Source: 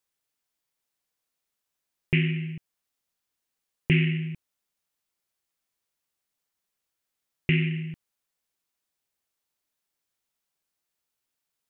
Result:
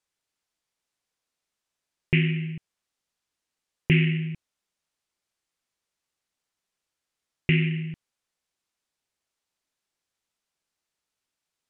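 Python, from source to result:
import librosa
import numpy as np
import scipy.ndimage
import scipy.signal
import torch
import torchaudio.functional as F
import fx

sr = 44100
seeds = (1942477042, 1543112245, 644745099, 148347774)

y = scipy.signal.sosfilt(scipy.signal.butter(2, 8800.0, 'lowpass', fs=sr, output='sos'), x)
y = F.gain(torch.from_numpy(y), 1.5).numpy()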